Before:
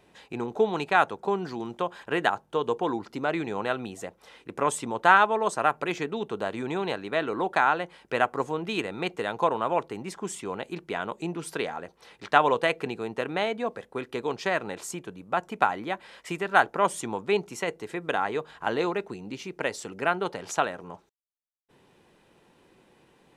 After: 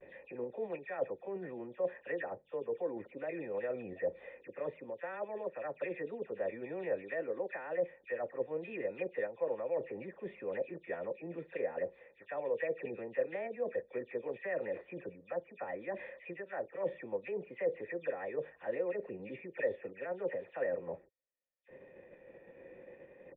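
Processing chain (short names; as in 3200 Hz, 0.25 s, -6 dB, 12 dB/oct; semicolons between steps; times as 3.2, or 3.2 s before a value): spectral delay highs early, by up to 0.16 s; low shelf 290 Hz +2.5 dB; in parallel at +1.5 dB: level quantiser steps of 10 dB; on the sum: vibrato 0.7 Hz 53 cents; reverse; compressor 5:1, threshold -37 dBFS, peak gain reduction 24.5 dB; reverse; vocal tract filter e; gain +10.5 dB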